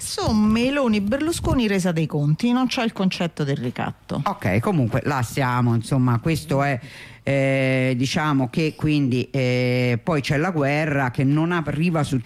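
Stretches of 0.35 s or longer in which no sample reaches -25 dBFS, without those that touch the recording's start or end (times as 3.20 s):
6.77–7.27 s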